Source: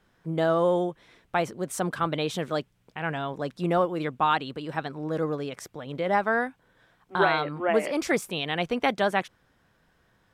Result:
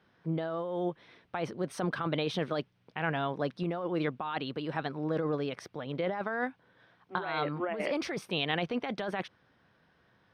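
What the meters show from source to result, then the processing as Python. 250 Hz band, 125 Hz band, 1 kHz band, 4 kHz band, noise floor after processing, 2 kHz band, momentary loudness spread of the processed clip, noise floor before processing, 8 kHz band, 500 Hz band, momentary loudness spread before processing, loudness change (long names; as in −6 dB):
−4.0 dB, −3.0 dB, −9.0 dB, −4.0 dB, −69 dBFS, −7.0 dB, 6 LU, −67 dBFS, below −10 dB, −7.0 dB, 10 LU, −6.5 dB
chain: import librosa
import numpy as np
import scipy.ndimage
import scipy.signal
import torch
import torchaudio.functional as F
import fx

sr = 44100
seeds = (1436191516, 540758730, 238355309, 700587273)

y = scipy.signal.sosfilt(scipy.signal.butter(2, 87.0, 'highpass', fs=sr, output='sos'), x)
y = fx.over_compress(y, sr, threshold_db=-28.0, ratio=-1.0)
y = scipy.signal.savgol_filter(y, 15, 4, mode='constant')
y = y * librosa.db_to_amplitude(-3.5)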